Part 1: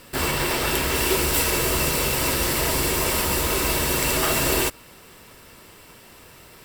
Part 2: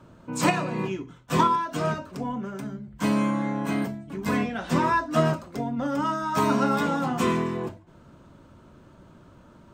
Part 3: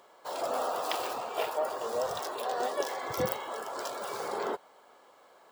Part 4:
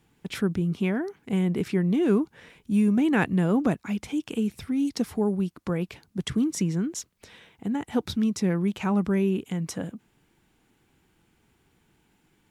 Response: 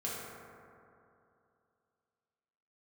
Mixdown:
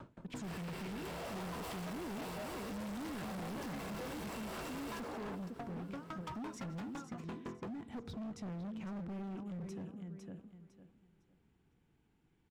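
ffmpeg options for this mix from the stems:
-filter_complex "[0:a]adelay=300,volume=-18.5dB,asplit=3[link_01][link_02][link_03];[link_02]volume=-6dB[link_04];[link_03]volume=-12.5dB[link_05];[1:a]acompressor=threshold=-27dB:ratio=5,aphaser=in_gain=1:out_gain=1:delay=2.8:decay=0.37:speed=0.26:type=sinusoidal,aeval=exprs='val(0)*pow(10,-38*if(lt(mod(5.9*n/s,1),2*abs(5.9)/1000),1-mod(5.9*n/s,1)/(2*abs(5.9)/1000),(mod(5.9*n/s,1)-2*abs(5.9)/1000)/(1-2*abs(5.9)/1000))/20)':channel_layout=same,volume=1dB,asplit=2[link_06][link_07];[link_07]volume=-21dB[link_08];[2:a]adelay=800,volume=-4dB[link_09];[3:a]lowshelf=frequency=350:gain=7.5,volume=-14dB,asplit=3[link_10][link_11][link_12];[link_11]volume=-19dB[link_13];[link_12]volume=-8.5dB[link_14];[4:a]atrim=start_sample=2205[link_15];[link_04][link_13]amix=inputs=2:normalize=0[link_16];[link_16][link_15]afir=irnorm=-1:irlink=0[link_17];[link_05][link_08][link_14]amix=inputs=3:normalize=0,aecho=0:1:505|1010|1515|2020:1|0.24|0.0576|0.0138[link_18];[link_01][link_06][link_09][link_10][link_17][link_18]amix=inputs=6:normalize=0,lowpass=frequency=4000:poles=1,asoftclip=type=hard:threshold=-35dB,acompressor=threshold=-42dB:ratio=6"

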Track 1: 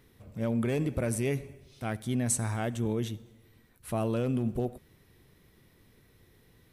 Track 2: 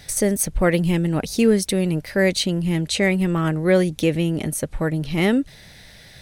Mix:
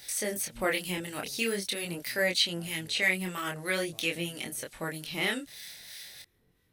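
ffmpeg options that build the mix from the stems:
ffmpeg -i stem1.wav -i stem2.wav -filter_complex "[0:a]acompressor=threshold=-34dB:ratio=6,volume=-4dB[link_01];[1:a]equalizer=frequency=3000:width_type=o:width=2.6:gain=5.5,acrossover=split=3900[link_02][link_03];[link_03]acompressor=threshold=-38dB:ratio=4:attack=1:release=60[link_04];[link_02][link_04]amix=inputs=2:normalize=0,aemphasis=mode=production:type=riaa,volume=-5dB,asplit=2[link_05][link_06];[link_06]apad=whole_len=296675[link_07];[link_01][link_07]sidechaincompress=threshold=-38dB:ratio=8:attack=16:release=201[link_08];[link_08][link_05]amix=inputs=2:normalize=0,acrossover=split=1200[link_09][link_10];[link_09]aeval=exprs='val(0)*(1-0.5/2+0.5/2*cos(2*PI*3.1*n/s))':channel_layout=same[link_11];[link_10]aeval=exprs='val(0)*(1-0.5/2-0.5/2*cos(2*PI*3.1*n/s))':channel_layout=same[link_12];[link_11][link_12]amix=inputs=2:normalize=0,flanger=delay=22.5:depth=5.1:speed=0.45" out.wav

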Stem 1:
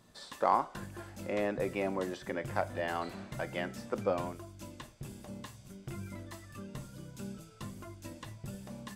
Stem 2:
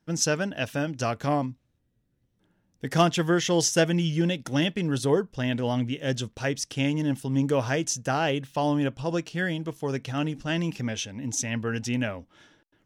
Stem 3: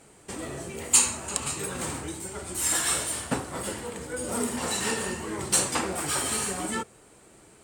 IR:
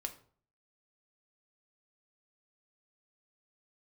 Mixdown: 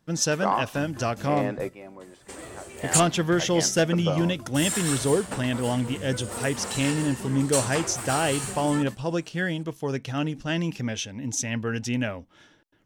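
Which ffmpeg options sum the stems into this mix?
-filter_complex "[0:a]volume=3dB[link_01];[1:a]volume=13dB,asoftclip=hard,volume=-13dB,acontrast=73,volume=-6dB,asplit=2[link_02][link_03];[2:a]equalizer=frequency=170:width=1.5:gain=-14.5,adelay=2000,volume=-3.5dB,asplit=3[link_04][link_05][link_06];[link_04]atrim=end=3,asetpts=PTS-STARTPTS,afade=type=out:start_time=2.996:duration=0.004:curve=hsin[link_07];[link_05]atrim=start=3:end=4.54,asetpts=PTS-STARTPTS,volume=0[link_08];[link_06]atrim=start=4.54,asetpts=PTS-STARTPTS,afade=type=in:duration=0.004:curve=hsin[link_09];[link_07][link_08][link_09]concat=n=3:v=0:a=1[link_10];[link_03]apad=whole_len=395064[link_11];[link_01][link_11]sidechaingate=range=-13dB:threshold=-53dB:ratio=16:detection=peak[link_12];[link_12][link_02][link_10]amix=inputs=3:normalize=0"

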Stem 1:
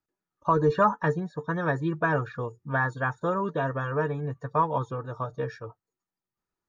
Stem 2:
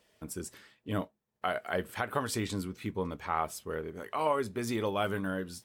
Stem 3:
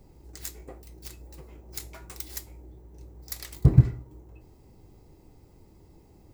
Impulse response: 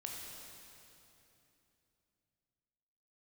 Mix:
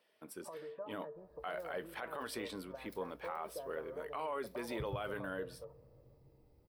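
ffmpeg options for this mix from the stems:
-filter_complex "[0:a]alimiter=limit=-20.5dB:level=0:latency=1,acompressor=threshold=-39dB:ratio=3,bandpass=frequency=560:width_type=q:width=3.8:csg=0,volume=-2.5dB,asplit=2[link_01][link_02];[link_02]volume=-8.5dB[link_03];[1:a]highpass=150,bass=frequency=250:gain=-11,treble=frequency=4000:gain=-3,volume=-4.5dB,asplit=2[link_04][link_05];[2:a]adelay=1150,volume=-14.5dB,asplit=2[link_06][link_07];[link_07]volume=-17dB[link_08];[link_05]apad=whole_len=330043[link_09];[link_06][link_09]sidechaincompress=threshold=-48dB:ratio=8:attack=8.6:release=374[link_10];[3:a]atrim=start_sample=2205[link_11];[link_03][link_08]amix=inputs=2:normalize=0[link_12];[link_12][link_11]afir=irnorm=-1:irlink=0[link_13];[link_01][link_04][link_10][link_13]amix=inputs=4:normalize=0,equalizer=frequency=6900:width_type=o:width=0.35:gain=-14,alimiter=level_in=6.5dB:limit=-24dB:level=0:latency=1:release=24,volume=-6.5dB"

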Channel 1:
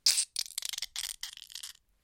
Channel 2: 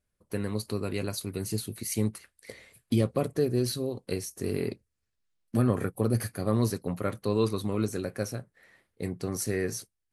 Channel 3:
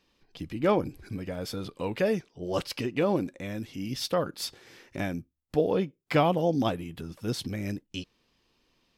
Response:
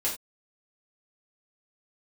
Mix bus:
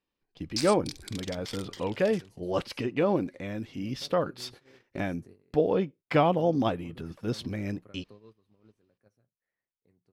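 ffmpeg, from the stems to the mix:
-filter_complex "[0:a]adelay=500,volume=-0.5dB[link_01];[1:a]acompressor=threshold=-40dB:ratio=2.5,adelay=850,volume=-13dB[link_02];[2:a]lowshelf=frequency=280:gain=-2.5,volume=1.5dB[link_03];[link_01][link_02][link_03]amix=inputs=3:normalize=0,lowpass=frequency=2600:poles=1,agate=range=-16dB:threshold=-48dB:ratio=16:detection=peak"

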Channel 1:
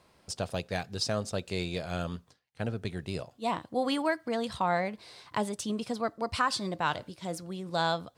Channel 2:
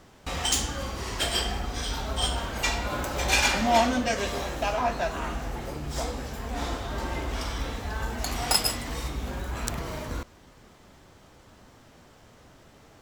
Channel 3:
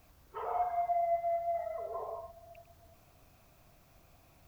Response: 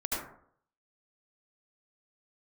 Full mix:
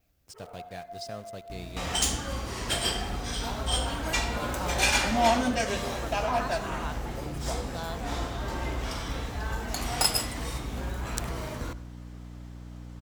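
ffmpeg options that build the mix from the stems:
-filter_complex "[0:a]aeval=exprs='val(0)*gte(abs(val(0)),0.0119)':channel_layout=same,volume=-10.5dB,asplit=2[link_01][link_02];[link_02]volume=-21dB[link_03];[1:a]aeval=exprs='val(0)+0.0126*(sin(2*PI*60*n/s)+sin(2*PI*2*60*n/s)/2+sin(2*PI*3*60*n/s)/3+sin(2*PI*4*60*n/s)/4+sin(2*PI*5*60*n/s)/5)':channel_layout=same,adelay=1500,volume=-2dB,asplit=2[link_04][link_05];[link_05]volume=-22.5dB[link_06];[2:a]equalizer=frequency=1000:width=2.4:gain=-13,volume=-8dB[link_07];[3:a]atrim=start_sample=2205[link_08];[link_03][link_06]amix=inputs=2:normalize=0[link_09];[link_09][link_08]afir=irnorm=-1:irlink=0[link_10];[link_01][link_04][link_07][link_10]amix=inputs=4:normalize=0,adynamicequalizer=threshold=0.00158:dfrequency=9100:dqfactor=6.8:tfrequency=9100:tqfactor=6.8:attack=5:release=100:ratio=0.375:range=3.5:mode=boostabove:tftype=bell"

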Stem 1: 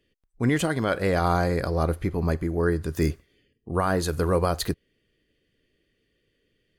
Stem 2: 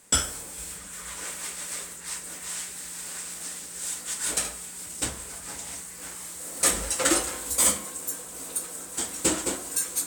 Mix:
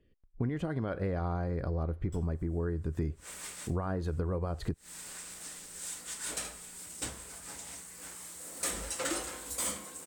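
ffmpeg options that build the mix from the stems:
ffmpeg -i stem1.wav -i stem2.wav -filter_complex "[0:a]lowpass=frequency=1100:poles=1,lowshelf=frequency=130:gain=8,volume=0dB,asplit=2[link_01][link_02];[1:a]asoftclip=type=tanh:threshold=-15.5dB,adynamicequalizer=threshold=0.0112:dfrequency=5600:dqfactor=0.7:tfrequency=5600:tqfactor=0.7:attack=5:release=100:ratio=0.375:range=2:mode=cutabove:tftype=highshelf,adelay=2000,volume=-7dB[link_03];[link_02]apad=whole_len=531968[link_04];[link_03][link_04]sidechaincompress=threshold=-43dB:ratio=8:attack=16:release=108[link_05];[link_01][link_05]amix=inputs=2:normalize=0,acompressor=threshold=-29dB:ratio=10" out.wav

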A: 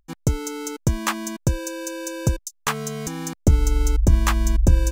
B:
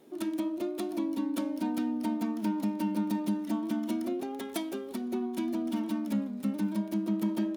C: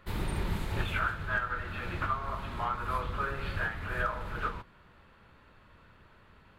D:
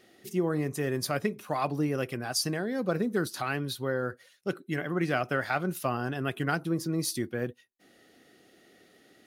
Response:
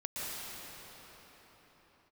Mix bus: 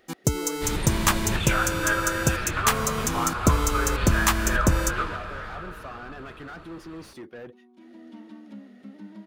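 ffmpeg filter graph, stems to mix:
-filter_complex "[0:a]highpass=frequency=140:poles=1,highshelf=frequency=5600:gain=6.5,volume=0.5dB[link_01];[1:a]lowpass=4500,adelay=2400,volume=-10.5dB[link_02];[2:a]lowpass=9100,highshelf=frequency=3200:gain=10,adelay=550,volume=1.5dB,asplit=2[link_03][link_04];[link_04]volume=-6.5dB[link_05];[3:a]asplit=2[link_06][link_07];[link_07]highpass=frequency=720:poles=1,volume=27dB,asoftclip=type=tanh:threshold=-15dB[link_08];[link_06][link_08]amix=inputs=2:normalize=0,lowpass=frequency=1200:poles=1,volume=-6dB,volume=-15.5dB,asplit=2[link_09][link_10];[link_10]apad=whole_len=439538[link_11];[link_02][link_11]sidechaincompress=threshold=-57dB:ratio=5:attack=16:release=521[link_12];[4:a]atrim=start_sample=2205[link_13];[link_05][link_13]afir=irnorm=-1:irlink=0[link_14];[link_01][link_12][link_03][link_09][link_14]amix=inputs=5:normalize=0"

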